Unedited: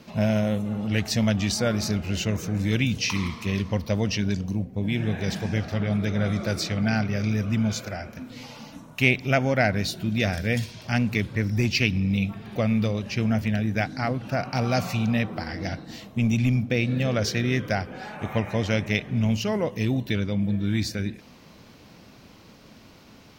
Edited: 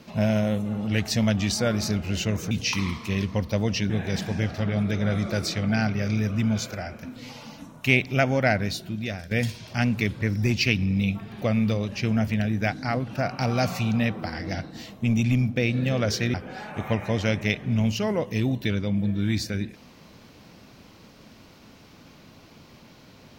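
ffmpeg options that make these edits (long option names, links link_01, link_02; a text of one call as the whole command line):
ffmpeg -i in.wav -filter_complex "[0:a]asplit=5[link_01][link_02][link_03][link_04][link_05];[link_01]atrim=end=2.512[link_06];[link_02]atrim=start=2.878:end=4.272[link_07];[link_03]atrim=start=5.038:end=10.45,asetpts=PTS-STARTPTS,afade=type=out:start_time=4.582:duration=0.83:silence=0.237137[link_08];[link_04]atrim=start=10.45:end=17.482,asetpts=PTS-STARTPTS,afade=type=in:duration=0.004:curve=hsin:silence=0.237137[link_09];[link_05]atrim=start=17.788[link_10];[link_06][link_07]acrossfade=duration=0.004:curve1=hsin:curve2=hsin[link_11];[link_08][link_09]concat=n=2:v=0:a=1[link_12];[link_11][link_12]acrossfade=duration=0.004:curve1=hsin:curve2=hsin[link_13];[link_13][link_10]acrossfade=duration=0.004:curve1=hsin:curve2=hsin" out.wav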